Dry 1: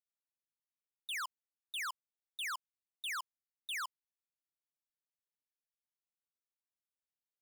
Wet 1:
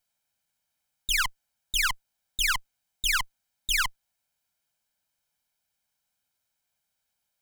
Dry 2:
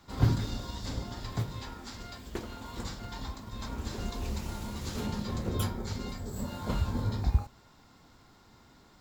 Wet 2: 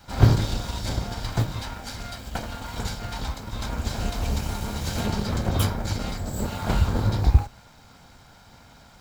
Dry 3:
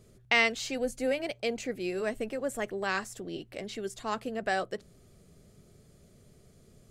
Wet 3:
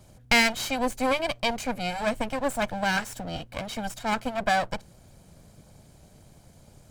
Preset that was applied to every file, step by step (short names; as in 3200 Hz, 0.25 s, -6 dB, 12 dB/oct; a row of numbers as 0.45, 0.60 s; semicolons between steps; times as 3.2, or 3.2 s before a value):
minimum comb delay 1.3 ms; match loudness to -27 LUFS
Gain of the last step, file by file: +16.0, +9.5, +6.5 dB